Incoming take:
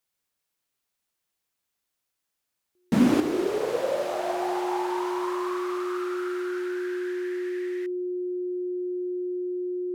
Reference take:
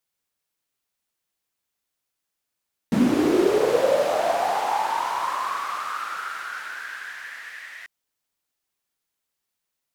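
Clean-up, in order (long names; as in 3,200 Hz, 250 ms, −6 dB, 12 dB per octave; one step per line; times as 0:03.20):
notch filter 360 Hz, Q 30
level 0 dB, from 0:03.20 +7 dB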